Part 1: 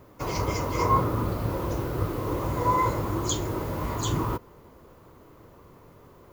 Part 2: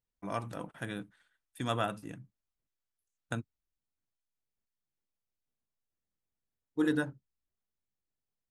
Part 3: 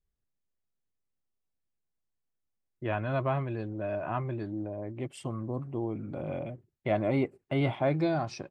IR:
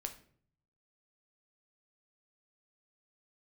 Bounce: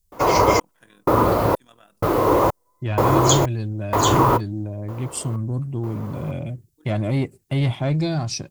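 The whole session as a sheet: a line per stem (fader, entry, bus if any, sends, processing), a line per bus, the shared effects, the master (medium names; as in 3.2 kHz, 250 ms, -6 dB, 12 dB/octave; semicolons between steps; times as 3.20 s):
+2.5 dB, 0.00 s, no send, trance gate ".xxxx..." 126 bpm -60 dB; peaking EQ 690 Hz +14 dB 2.6 oct
-12.5 dB, 0.00 s, no send, high-pass 160 Hz; AM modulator 42 Hz, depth 50%; auto duck -14 dB, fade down 1.95 s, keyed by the third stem
0.0 dB, 0.00 s, no send, tone controls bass +14 dB, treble +15 dB; saturation -14 dBFS, distortion -20 dB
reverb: none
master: treble shelf 2.2 kHz +7.5 dB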